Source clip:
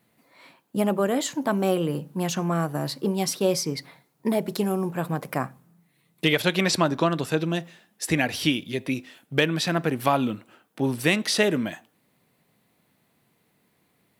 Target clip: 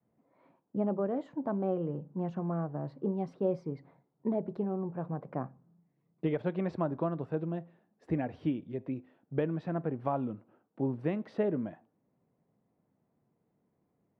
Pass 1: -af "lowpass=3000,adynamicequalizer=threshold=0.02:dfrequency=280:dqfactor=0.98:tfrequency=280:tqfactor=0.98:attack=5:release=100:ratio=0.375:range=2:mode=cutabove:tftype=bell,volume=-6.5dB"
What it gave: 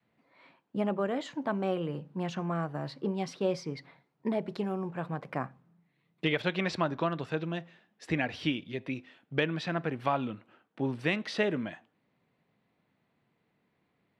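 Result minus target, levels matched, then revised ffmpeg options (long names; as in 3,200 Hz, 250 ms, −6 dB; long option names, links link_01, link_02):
4,000 Hz band +20.0 dB
-af "lowpass=770,adynamicequalizer=threshold=0.02:dfrequency=280:dqfactor=0.98:tfrequency=280:tqfactor=0.98:attack=5:release=100:ratio=0.375:range=2:mode=cutabove:tftype=bell,volume=-6.5dB"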